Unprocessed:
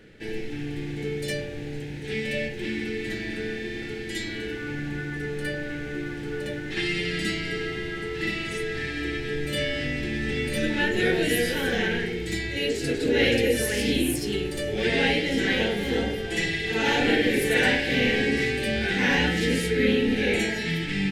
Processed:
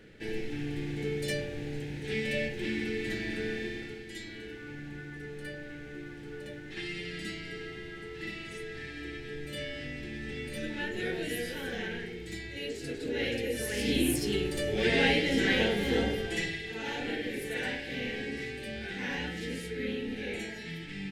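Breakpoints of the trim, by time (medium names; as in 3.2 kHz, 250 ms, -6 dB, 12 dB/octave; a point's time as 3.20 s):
3.64 s -3 dB
4.06 s -11 dB
13.47 s -11 dB
14.06 s -2.5 dB
16.21 s -2.5 dB
16.77 s -13 dB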